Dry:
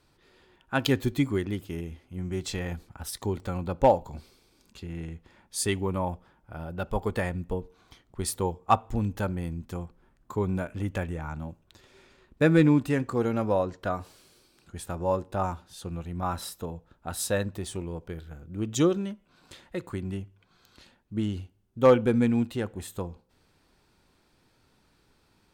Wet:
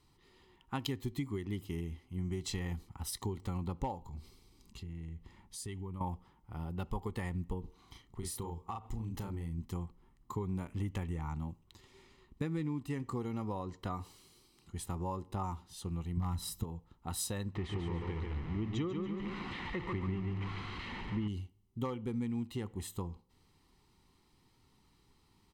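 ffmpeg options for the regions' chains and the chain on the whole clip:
ffmpeg -i in.wav -filter_complex "[0:a]asettb=1/sr,asplit=3[link_01][link_02][link_03];[link_01]atrim=end=4.054[link_04];[link_02]atrim=start=4.05:end=6.01,asetpts=PTS-STARTPTS,afade=type=in:duration=0.004:curve=qsin,afade=type=out:start_time=1.956:duration=0.004:curve=qsin,lowshelf=frequency=160:gain=8,acompressor=threshold=-41dB:ratio=3:attack=3.2:release=140:knee=1:detection=peak[link_05];[link_03]atrim=start=6.006[link_06];[link_04][link_05]acrossfade=duration=0.004:curve1=hsin:curve2=qsin[link_07];[link_07][link_06]acrossfade=duration=0.004:curve1=qsin:curve2=hsin,asettb=1/sr,asplit=3[link_08][link_09][link_10];[link_08]atrim=end=7.604[link_11];[link_09]atrim=start=7.6:end=9.58,asetpts=PTS-STARTPTS,afade=type=in:duration=0.004:curve=qsin,afade=type=out:start_time=1.976:duration=0.004:curve=qsin,asplit=2[link_12][link_13];[link_13]adelay=36,volume=-3dB[link_14];[link_12][link_14]amix=inputs=2:normalize=0,atrim=end_sample=87318,acompressor=threshold=-32dB:ratio=16:attack=3.2:release=140:knee=1:detection=peak[link_15];[link_10]atrim=start=9.576[link_16];[link_11][link_15]acrossfade=duration=0.004:curve1=hsin:curve2=qsin[link_17];[link_17][link_16]acrossfade=duration=0.004:curve1=qsin:curve2=hsin,asettb=1/sr,asplit=3[link_18][link_19][link_20];[link_18]atrim=end=16.174[link_21];[link_19]atrim=start=16.17:end=16.64,asetpts=PTS-STARTPTS,afade=type=in:duration=0.004:curve=qsin,afade=type=out:start_time=0.466:duration=0.004:curve=qsin,bass=frequency=250:gain=12,treble=frequency=4000:gain=4,aeval=exprs='0.168*(abs(mod(val(0)/0.168+3,4)-2)-1)':channel_layout=same[link_22];[link_20]atrim=start=16.636[link_23];[link_21][link_22]acrossfade=duration=0.004:curve1=hsin:curve2=qsin[link_24];[link_24][link_23]acrossfade=duration=0.004:curve1=qsin:curve2=hsin,asettb=1/sr,asplit=3[link_25][link_26][link_27];[link_25]atrim=end=17.554[link_28];[link_26]atrim=start=17.55:end=21.28,asetpts=PTS-STARTPTS,afade=type=in:duration=0.004:curve=qsin,afade=type=out:start_time=3.726:duration=0.004:curve=qsin,aeval=exprs='val(0)+0.5*0.0188*sgn(val(0))':channel_layout=same,lowpass=frequency=2200:width_type=q:width=1.6,aecho=1:1:141|282|423|564|705:0.562|0.219|0.0855|0.0334|0.013,atrim=end_sample=164493[link_29];[link_27]atrim=start=21.276[link_30];[link_28][link_29]acrossfade=duration=0.004:curve1=hsin:curve2=qsin[link_31];[link_31][link_30]acrossfade=duration=0.004:curve1=qsin:curve2=hsin,equalizer=frequency=400:width_type=o:width=0.33:gain=4,equalizer=frequency=630:width_type=o:width=0.33:gain=-10,equalizer=frequency=1600:width_type=o:width=0.33:gain=-8,acompressor=threshold=-30dB:ratio=6,aecho=1:1:1:0.43,volume=-4dB" out.wav

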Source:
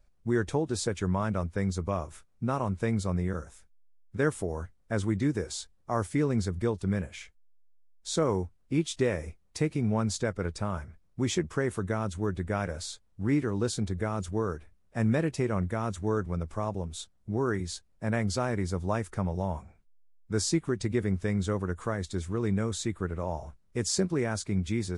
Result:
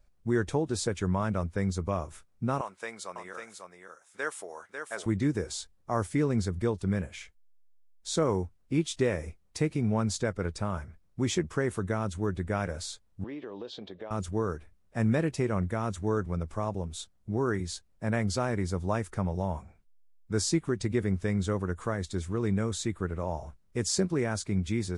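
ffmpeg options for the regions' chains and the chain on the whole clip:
ffmpeg -i in.wav -filter_complex "[0:a]asettb=1/sr,asplit=3[link_01][link_02][link_03];[link_01]atrim=end=2.614[link_04];[link_02]atrim=start=2.61:end=5.06,asetpts=PTS-STARTPTS,afade=type=in:duration=0.004:curve=qsin,afade=type=out:start_time=2.446:duration=0.004:curve=qsin,highpass=750,aecho=1:1:546:0.501,atrim=end_sample=108045[link_05];[link_03]atrim=start=5.056[link_06];[link_04][link_05]acrossfade=duration=0.004:curve1=hsin:curve2=qsin[link_07];[link_07][link_06]acrossfade=duration=0.004:curve1=qsin:curve2=hsin,asettb=1/sr,asplit=3[link_08][link_09][link_10];[link_08]atrim=end=13.244[link_11];[link_09]atrim=start=13.24:end=14.11,asetpts=PTS-STARTPTS,afade=type=in:duration=0.004:curve=qsin,afade=type=out:start_time=0.866:duration=0.004:curve=qsin,highpass=390,equalizer=frequency=560:width_type=q:width=4:gain=5,equalizer=frequency=1400:width_type=q:width=4:gain=-9,equalizer=frequency=2100:width_type=q:width=4:gain=-6,equalizer=frequency=3300:width_type=q:width=4:gain=7,lowpass=frequency=3900:width=0.5412,lowpass=frequency=3900:width=1.3066,acompressor=threshold=-37dB:ratio=4:attack=3.2:release=140:knee=1:detection=peak[link_12];[link_10]atrim=start=14.106[link_13];[link_11][link_12]acrossfade=duration=0.004:curve1=hsin:curve2=qsin[link_14];[link_14][link_13]acrossfade=duration=0.004:curve1=qsin:curve2=hsin" out.wav

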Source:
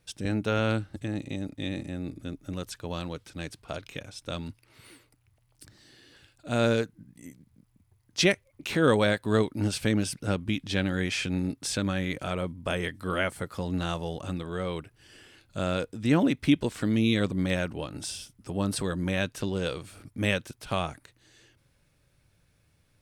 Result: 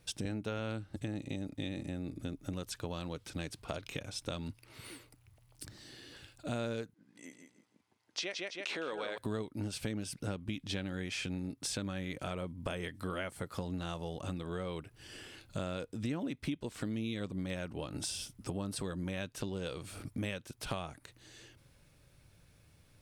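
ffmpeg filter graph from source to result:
ffmpeg -i in.wav -filter_complex "[0:a]asettb=1/sr,asplit=3[link_01][link_02][link_03];[link_01]atrim=end=6.944[link_04];[link_02]atrim=start=6.94:end=9.18,asetpts=PTS-STARTPTS,afade=type=in:duration=0.004:curve=qsin,afade=type=out:start_time=2.236:duration=0.004:curve=qsin,aecho=1:1:160|320|480:0.447|0.107|0.0257,atrim=end_sample=98784,acompressor=threshold=-32dB:ratio=2:attack=3.2:release=140:knee=1:detection=peak,highpass=470,lowpass=5800[link_05];[link_03]atrim=start=9.176[link_06];[link_04][link_05]acrossfade=duration=0.004:curve1=hsin:curve2=qsin[link_07];[link_07][link_06]acrossfade=duration=0.004:curve1=qsin:curve2=hsin,equalizer=frequency=1700:width_type=o:width=0.77:gain=-2,acompressor=threshold=-39dB:ratio=6,volume=3.5dB" out.wav

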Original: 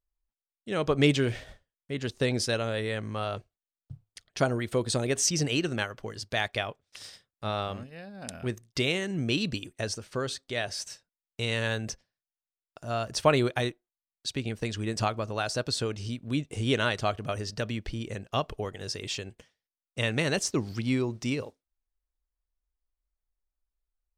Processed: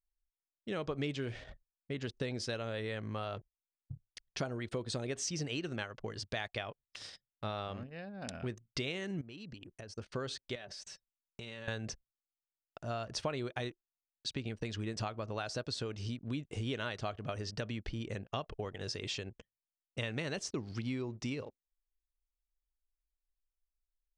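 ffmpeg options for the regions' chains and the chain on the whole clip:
ffmpeg -i in.wav -filter_complex "[0:a]asettb=1/sr,asplit=3[link_01][link_02][link_03];[link_01]atrim=end=9.214[link_04];[link_02]atrim=start=9.21:end=9.98,asetpts=PTS-STARTPTS,afade=type=in:duration=0.004:curve=qsin,afade=type=out:start_time=0.766:duration=0.004:curve=qsin,equalizer=frequency=10000:width=8:gain=7,bandreject=frequency=3600:width=8.1,acompressor=threshold=-43dB:ratio=8:attack=3.2:release=140:knee=1:detection=peak[link_05];[link_03]atrim=start=9.976[link_06];[link_04][link_05]acrossfade=duration=0.004:curve1=hsin:curve2=qsin[link_07];[link_07][link_06]acrossfade=duration=0.004:curve1=qsin:curve2=hsin,asettb=1/sr,asplit=3[link_08][link_09][link_10];[link_08]atrim=end=10.554[link_11];[link_09]atrim=start=10.55:end=11.68,asetpts=PTS-STARTPTS,afade=type=in:duration=0.004:curve=qsin,afade=type=out:start_time=1.126:duration=0.004:curve=qsin,aecho=1:1:5.2:0.45,atrim=end_sample=49833,acompressor=threshold=-40dB:ratio=12:attack=3.2:release=140:knee=1:detection=peak[link_12];[link_10]atrim=start=11.676[link_13];[link_11][link_12]acrossfade=duration=0.004:curve1=hsin:curve2=qsin[link_14];[link_14][link_13]acrossfade=duration=0.004:curve1=qsin:curve2=hsin,anlmdn=0.00251,lowpass=6100,acompressor=threshold=-34dB:ratio=4,volume=-1.5dB" out.wav

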